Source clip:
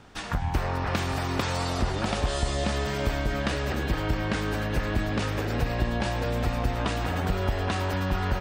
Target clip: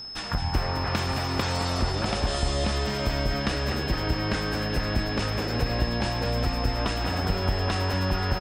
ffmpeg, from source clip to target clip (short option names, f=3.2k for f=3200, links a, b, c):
-af "aecho=1:1:216:0.335,aeval=exprs='val(0)+0.0158*sin(2*PI*5200*n/s)':c=same"